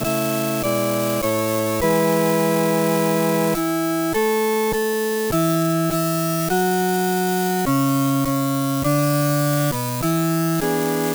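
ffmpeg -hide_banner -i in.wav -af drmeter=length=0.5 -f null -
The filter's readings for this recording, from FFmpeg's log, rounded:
Channel 1: DR: 7.4
Overall DR: 7.4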